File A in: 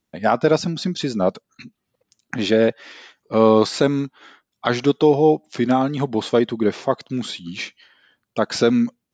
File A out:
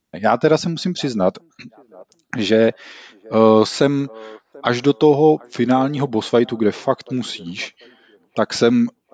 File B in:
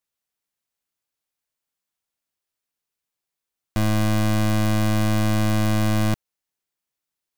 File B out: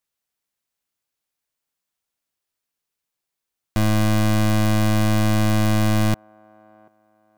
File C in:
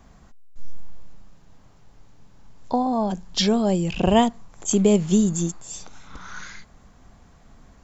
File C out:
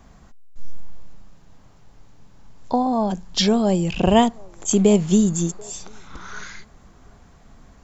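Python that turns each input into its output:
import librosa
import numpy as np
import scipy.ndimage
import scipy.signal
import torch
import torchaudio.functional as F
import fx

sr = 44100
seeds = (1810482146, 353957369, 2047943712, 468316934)

y = fx.echo_wet_bandpass(x, sr, ms=737, feedback_pct=30, hz=640.0, wet_db=-24)
y = y * 10.0 ** (2.0 / 20.0)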